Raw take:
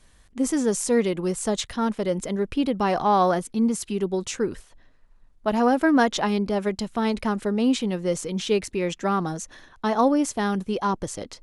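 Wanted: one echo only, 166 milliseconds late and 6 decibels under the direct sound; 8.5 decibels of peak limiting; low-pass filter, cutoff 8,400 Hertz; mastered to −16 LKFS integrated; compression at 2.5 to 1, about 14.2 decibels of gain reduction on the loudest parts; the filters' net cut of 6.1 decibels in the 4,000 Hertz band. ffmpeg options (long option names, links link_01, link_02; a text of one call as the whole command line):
ffmpeg -i in.wav -af "lowpass=8400,equalizer=frequency=4000:width_type=o:gain=-8,acompressor=threshold=-38dB:ratio=2.5,alimiter=level_in=7.5dB:limit=-24dB:level=0:latency=1,volume=-7.5dB,aecho=1:1:166:0.501,volume=23.5dB" out.wav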